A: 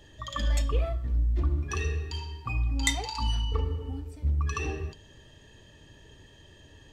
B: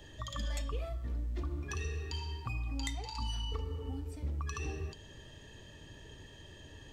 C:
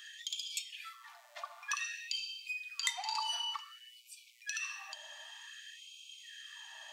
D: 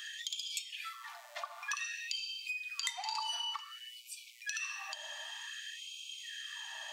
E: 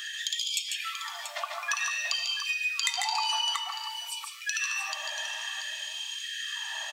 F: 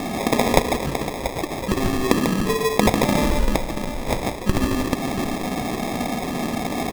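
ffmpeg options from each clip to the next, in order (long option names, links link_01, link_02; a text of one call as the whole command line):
ffmpeg -i in.wav -filter_complex "[0:a]acrossover=split=260|4500[link_01][link_02][link_03];[link_01]acompressor=threshold=-38dB:ratio=4[link_04];[link_02]acompressor=threshold=-45dB:ratio=4[link_05];[link_03]acompressor=threshold=-49dB:ratio=4[link_06];[link_04][link_05][link_06]amix=inputs=3:normalize=0,volume=1dB" out.wav
ffmpeg -i in.wav -af "afftfilt=real='re*gte(b*sr/1024,560*pow(2300/560,0.5+0.5*sin(2*PI*0.54*pts/sr)))':imag='im*gte(b*sr/1024,560*pow(2300/560,0.5+0.5*sin(2*PI*0.54*pts/sr)))':win_size=1024:overlap=0.75,volume=7.5dB" out.wav
ffmpeg -i in.wav -af "acompressor=threshold=-47dB:ratio=2,volume=6.5dB" out.wav
ffmpeg -i in.wav -af "aecho=1:1:145|161|685:0.562|0.282|0.335,volume=7.5dB" out.wav
ffmpeg -i in.wav -af "aemphasis=mode=production:type=75fm,acrusher=samples=30:mix=1:aa=0.000001,volume=6dB" out.wav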